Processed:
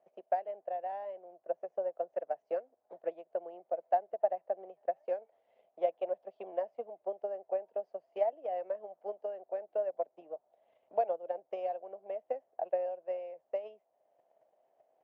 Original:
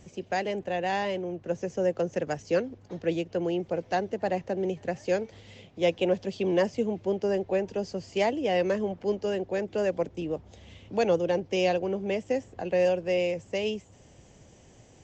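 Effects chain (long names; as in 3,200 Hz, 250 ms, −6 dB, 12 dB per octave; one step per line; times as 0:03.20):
transient designer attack +11 dB, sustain −3 dB
four-pole ladder band-pass 700 Hz, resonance 75%
level −6 dB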